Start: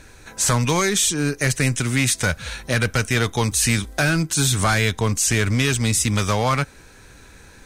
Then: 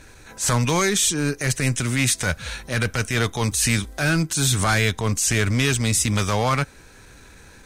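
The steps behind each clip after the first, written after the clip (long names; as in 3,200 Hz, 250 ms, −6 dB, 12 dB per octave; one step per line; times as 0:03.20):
transient designer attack −8 dB, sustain −1 dB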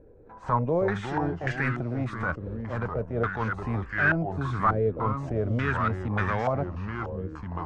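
delay with pitch and tempo change per echo 232 ms, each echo −3 semitones, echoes 2, each echo −6 dB
low-pass on a step sequencer 3.4 Hz 480–1,700 Hz
level −8 dB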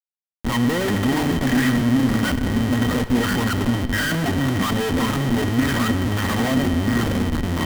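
comparator with hysteresis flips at −37 dBFS
hollow resonant body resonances 250/1,900/3,100 Hz, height 16 dB, ringing for 85 ms
convolution reverb RT60 2.2 s, pre-delay 47 ms, DRR 11.5 dB
level +4.5 dB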